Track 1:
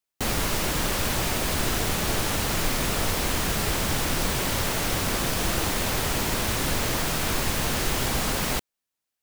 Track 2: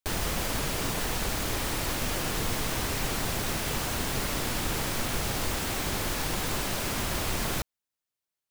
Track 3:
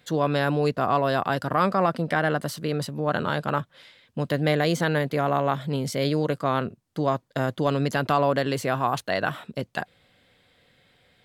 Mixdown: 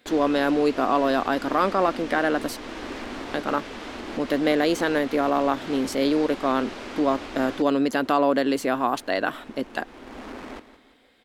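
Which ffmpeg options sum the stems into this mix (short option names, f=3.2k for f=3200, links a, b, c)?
-filter_complex "[0:a]adynamicsmooth=sensitivity=2.5:basefreq=840,adelay=2000,volume=-9.5dB,asplit=2[a][b];[b]volume=-14.5dB[c];[1:a]lowpass=3.7k,alimiter=limit=-24dB:level=0:latency=1:release=257,volume=-2dB[d];[2:a]volume=0dB,asplit=3[e][f][g];[e]atrim=end=2.57,asetpts=PTS-STARTPTS,afade=t=out:st=2.566:d=0.004:c=hsin[h];[f]atrim=start=2.57:end=3.34,asetpts=PTS-STARTPTS,volume=0[i];[g]atrim=start=3.34,asetpts=PTS-STARTPTS,afade=t=in:d=0.004:c=hsin[j];[h][i][j]concat=n=3:v=0:a=1,asplit=2[k][l];[l]apad=whole_len=495023[m];[a][m]sidechaincompress=threshold=-33dB:ratio=8:attack=9.7:release=467[n];[c]aecho=0:1:172|344|516|688|860|1032:1|0.46|0.212|0.0973|0.0448|0.0206[o];[n][d][k][o]amix=inputs=4:normalize=0,lowshelf=f=200:t=q:w=3:g=-8.5"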